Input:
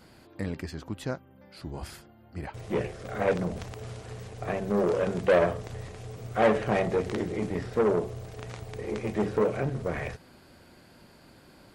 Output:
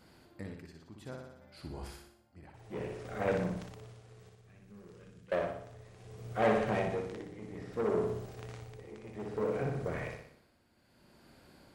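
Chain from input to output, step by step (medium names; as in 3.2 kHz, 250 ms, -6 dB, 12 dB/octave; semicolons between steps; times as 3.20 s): 4.29–5.32 s: amplifier tone stack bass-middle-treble 6-0-2; on a send: flutter echo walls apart 10.3 m, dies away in 0.76 s; on the sum: tremolo 0.61 Hz, depth 73%; trim -6.5 dB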